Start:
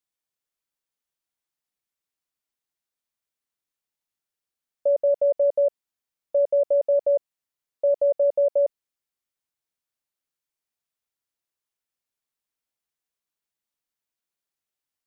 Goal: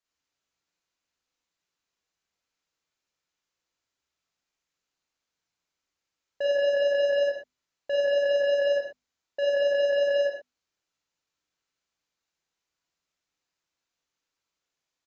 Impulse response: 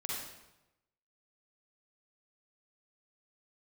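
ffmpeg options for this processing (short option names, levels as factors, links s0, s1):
-filter_complex "[0:a]areverse,asoftclip=type=tanh:threshold=0.0422,aresample=16000,aresample=44100,bandreject=f=50:t=h:w=6,bandreject=f=100:t=h:w=6,bandreject=f=150:t=h:w=6,bandreject=f=200:t=h:w=6,bandreject=f=250:t=h:w=6[s0];[1:a]atrim=start_sample=2205,afade=t=out:st=0.29:d=0.01,atrim=end_sample=13230,asetrate=52920,aresample=44100[s1];[s0][s1]afir=irnorm=-1:irlink=0,volume=2.11"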